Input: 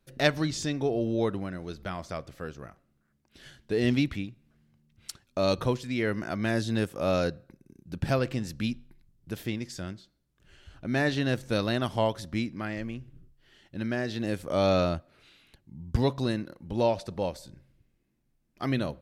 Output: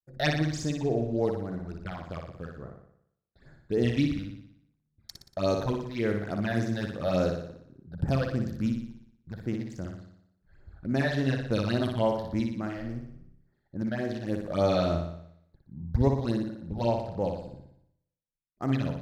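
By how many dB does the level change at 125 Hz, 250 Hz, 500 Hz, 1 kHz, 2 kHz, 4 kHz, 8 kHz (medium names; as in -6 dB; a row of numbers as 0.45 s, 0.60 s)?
+2.0 dB, +0.5 dB, -0.5 dB, -1.0 dB, -3.0 dB, -4.0 dB, -4.5 dB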